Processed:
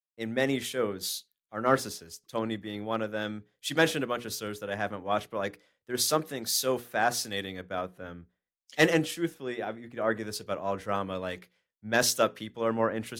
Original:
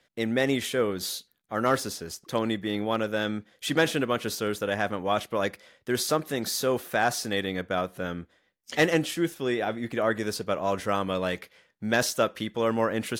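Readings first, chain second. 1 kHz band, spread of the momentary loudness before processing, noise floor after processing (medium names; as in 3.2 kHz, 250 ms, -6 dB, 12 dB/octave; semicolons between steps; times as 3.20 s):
-2.5 dB, 8 LU, under -85 dBFS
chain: hum notches 60/120/180/240/300/360/420/480 Hz; three bands expanded up and down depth 100%; trim -3.5 dB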